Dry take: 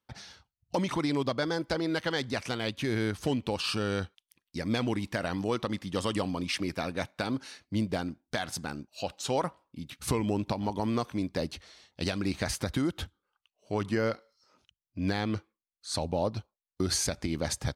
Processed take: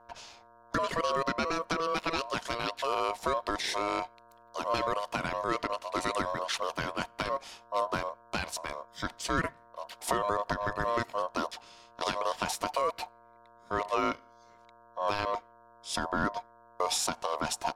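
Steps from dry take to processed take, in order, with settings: mains buzz 120 Hz, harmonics 7, -57 dBFS -5 dB/octave; ring modulator 820 Hz; trim +2 dB

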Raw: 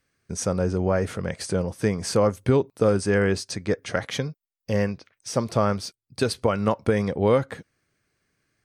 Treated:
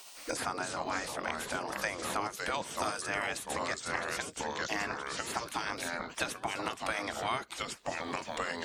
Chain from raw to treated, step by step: spectral gate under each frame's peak -15 dB weak; 2.54–3.88 s: treble shelf 4.1 kHz +9 dB; ever faster or slower copies 209 ms, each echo -3 st, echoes 2, each echo -6 dB; three bands compressed up and down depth 100%

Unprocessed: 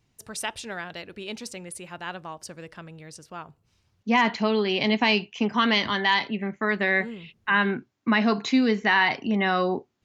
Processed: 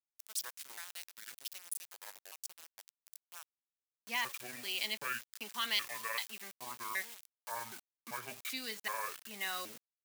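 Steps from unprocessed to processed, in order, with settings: pitch shift switched off and on -9.5 st, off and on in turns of 386 ms; small samples zeroed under -34 dBFS; differentiator; trim -1 dB

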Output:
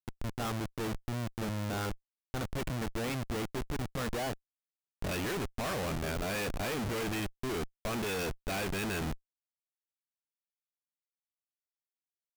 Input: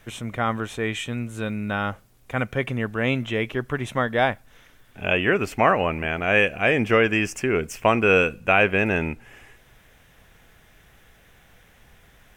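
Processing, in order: level-controlled noise filter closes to 350 Hz, open at -15.5 dBFS; Schmitt trigger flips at -29 dBFS; trim -9 dB

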